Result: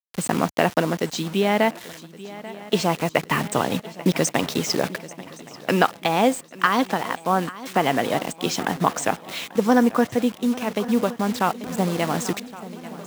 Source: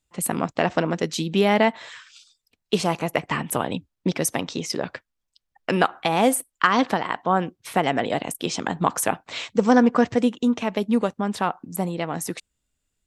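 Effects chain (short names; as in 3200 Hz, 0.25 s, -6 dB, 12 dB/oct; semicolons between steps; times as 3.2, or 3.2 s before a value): steep low-pass 8300 Hz 96 dB/oct; requantised 6-bit, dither none; HPF 68 Hz; swung echo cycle 1.118 s, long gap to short 3:1, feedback 47%, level -18 dB; vocal rider 2 s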